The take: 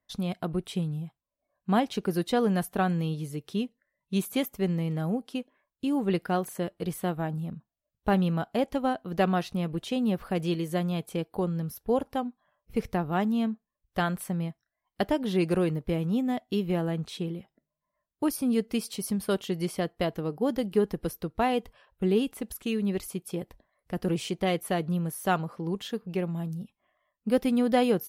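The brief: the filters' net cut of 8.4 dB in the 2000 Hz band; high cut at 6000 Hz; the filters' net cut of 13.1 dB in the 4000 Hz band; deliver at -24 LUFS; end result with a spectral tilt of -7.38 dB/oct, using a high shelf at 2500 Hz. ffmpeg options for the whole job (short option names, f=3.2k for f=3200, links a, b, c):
-af "lowpass=6k,equalizer=f=2k:t=o:g=-6,highshelf=f=2.5k:g=-8.5,equalizer=f=4k:t=o:g=-7.5,volume=6.5dB"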